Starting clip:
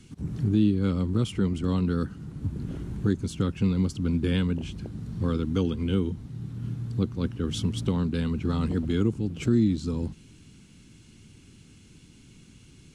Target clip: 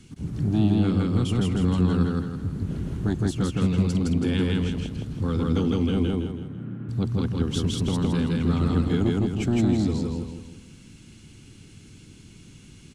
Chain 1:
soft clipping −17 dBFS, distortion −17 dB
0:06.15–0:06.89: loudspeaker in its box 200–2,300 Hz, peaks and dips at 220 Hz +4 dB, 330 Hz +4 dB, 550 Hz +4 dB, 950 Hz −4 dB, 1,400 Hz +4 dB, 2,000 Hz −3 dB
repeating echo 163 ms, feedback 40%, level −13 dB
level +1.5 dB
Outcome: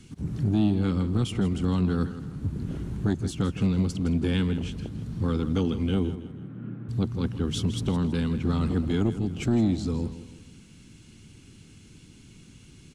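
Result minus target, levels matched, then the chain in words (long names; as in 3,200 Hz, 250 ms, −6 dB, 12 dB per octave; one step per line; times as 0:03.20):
echo-to-direct −12 dB
soft clipping −17 dBFS, distortion −17 dB
0:06.15–0:06.89: loudspeaker in its box 200–2,300 Hz, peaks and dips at 220 Hz +4 dB, 330 Hz +4 dB, 550 Hz +4 dB, 950 Hz −4 dB, 1,400 Hz +4 dB, 2,000 Hz −3 dB
repeating echo 163 ms, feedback 40%, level −1 dB
level +1.5 dB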